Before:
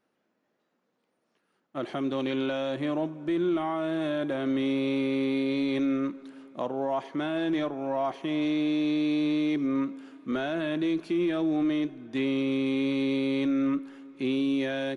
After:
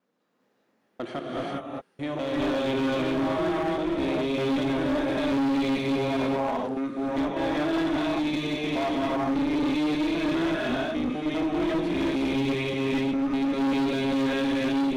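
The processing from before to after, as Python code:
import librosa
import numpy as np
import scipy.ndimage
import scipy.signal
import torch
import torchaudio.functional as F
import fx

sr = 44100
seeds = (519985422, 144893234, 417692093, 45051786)

y = fx.block_reorder(x, sr, ms=199.0, group=5)
y = fx.rev_gated(y, sr, seeds[0], gate_ms=430, shape='rising', drr_db=-5.0)
y = fx.clip_asym(y, sr, top_db=-26.5, bottom_db=-19.5)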